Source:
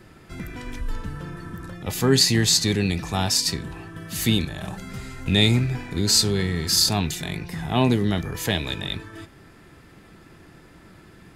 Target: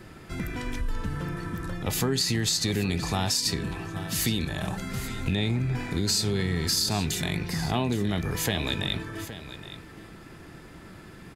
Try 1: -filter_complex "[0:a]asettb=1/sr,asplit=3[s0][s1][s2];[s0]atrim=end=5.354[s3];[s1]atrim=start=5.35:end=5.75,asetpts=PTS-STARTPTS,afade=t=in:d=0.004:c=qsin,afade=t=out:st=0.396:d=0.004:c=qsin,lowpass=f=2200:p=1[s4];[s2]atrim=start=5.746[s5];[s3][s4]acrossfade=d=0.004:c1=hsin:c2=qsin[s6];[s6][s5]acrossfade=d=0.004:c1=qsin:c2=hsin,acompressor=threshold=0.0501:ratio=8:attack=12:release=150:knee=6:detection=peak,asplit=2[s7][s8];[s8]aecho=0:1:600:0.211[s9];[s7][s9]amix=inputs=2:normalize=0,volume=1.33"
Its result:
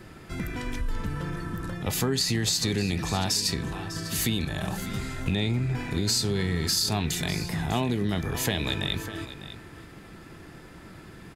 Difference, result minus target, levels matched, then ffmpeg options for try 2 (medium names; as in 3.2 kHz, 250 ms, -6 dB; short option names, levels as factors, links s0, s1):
echo 219 ms early
-filter_complex "[0:a]asettb=1/sr,asplit=3[s0][s1][s2];[s0]atrim=end=5.354[s3];[s1]atrim=start=5.35:end=5.75,asetpts=PTS-STARTPTS,afade=t=in:d=0.004:c=qsin,afade=t=out:st=0.396:d=0.004:c=qsin,lowpass=f=2200:p=1[s4];[s2]atrim=start=5.746[s5];[s3][s4]acrossfade=d=0.004:c1=hsin:c2=qsin[s6];[s6][s5]acrossfade=d=0.004:c1=qsin:c2=hsin,acompressor=threshold=0.0501:ratio=8:attack=12:release=150:knee=6:detection=peak,asplit=2[s7][s8];[s8]aecho=0:1:819:0.211[s9];[s7][s9]amix=inputs=2:normalize=0,volume=1.33"